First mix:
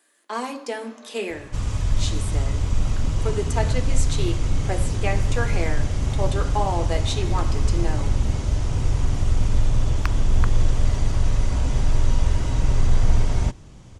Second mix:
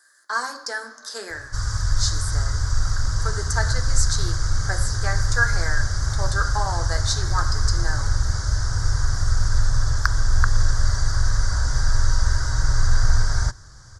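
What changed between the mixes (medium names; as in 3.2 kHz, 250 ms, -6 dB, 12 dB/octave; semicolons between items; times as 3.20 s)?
first sound -3.5 dB; master: add FFT filter 110 Hz 0 dB, 210 Hz -15 dB, 890 Hz -2 dB, 1.6 kHz +14 dB, 2.6 kHz -21 dB, 4.8 kHz +13 dB, 9 kHz +3 dB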